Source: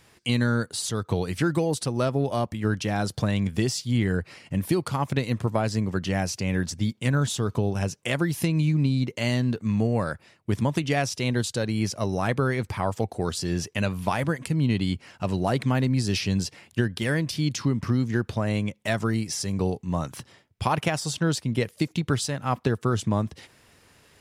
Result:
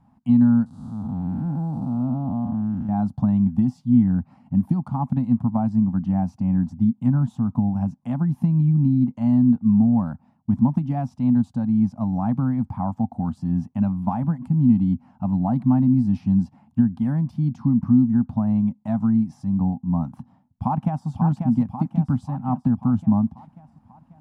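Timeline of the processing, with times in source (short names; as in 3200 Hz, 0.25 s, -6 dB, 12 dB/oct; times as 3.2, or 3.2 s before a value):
0.66–2.89 time blur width 0.338 s
20.1–21.08 echo throw 0.54 s, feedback 60%, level -5.5 dB
whole clip: EQ curve 110 Hz 0 dB, 250 Hz +12 dB, 400 Hz -28 dB, 810 Hz +4 dB, 1900 Hz -23 dB, 5000 Hz -29 dB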